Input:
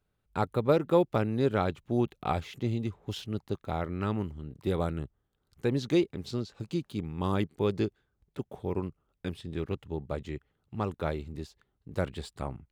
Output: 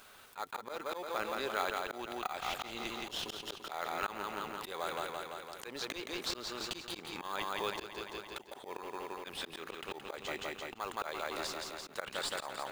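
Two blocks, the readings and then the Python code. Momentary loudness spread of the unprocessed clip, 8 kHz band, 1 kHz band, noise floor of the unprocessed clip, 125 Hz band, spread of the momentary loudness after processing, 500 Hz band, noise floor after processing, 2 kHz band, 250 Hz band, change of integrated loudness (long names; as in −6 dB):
13 LU, +8.0 dB, −2.0 dB, −78 dBFS, −25.0 dB, 7 LU, −10.5 dB, −54 dBFS, +3.0 dB, −16.5 dB, −7.5 dB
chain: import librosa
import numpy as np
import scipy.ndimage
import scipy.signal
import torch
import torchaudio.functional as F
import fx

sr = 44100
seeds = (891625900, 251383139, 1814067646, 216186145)

p1 = fx.rider(x, sr, range_db=4, speed_s=0.5)
p2 = p1 + fx.echo_feedback(p1, sr, ms=170, feedback_pct=49, wet_db=-7, dry=0)
p3 = fx.auto_swell(p2, sr, attack_ms=321.0)
p4 = scipy.signal.sosfilt(scipy.signal.butter(2, 1100.0, 'highpass', fs=sr, output='sos'), p3)
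p5 = fx.sample_hold(p4, sr, seeds[0], rate_hz=2700.0, jitter_pct=0)
p6 = p4 + (p5 * librosa.db_to_amplitude(-8.0))
p7 = fx.env_flatten(p6, sr, amount_pct=50)
y = p7 * librosa.db_to_amplitude(2.0)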